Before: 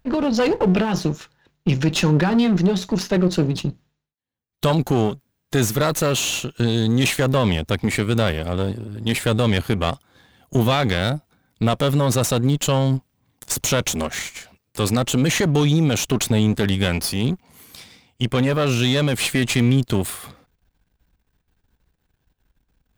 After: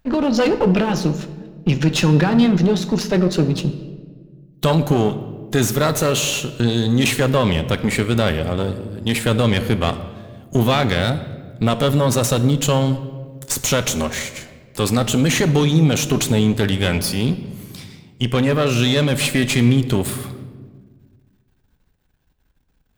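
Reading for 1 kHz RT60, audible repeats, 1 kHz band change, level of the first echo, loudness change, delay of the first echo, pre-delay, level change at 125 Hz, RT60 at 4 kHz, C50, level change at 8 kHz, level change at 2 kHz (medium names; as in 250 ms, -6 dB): 1.3 s, no echo, +2.0 dB, no echo, +2.0 dB, no echo, 4 ms, +2.0 dB, 0.95 s, 12.5 dB, +1.5 dB, +2.0 dB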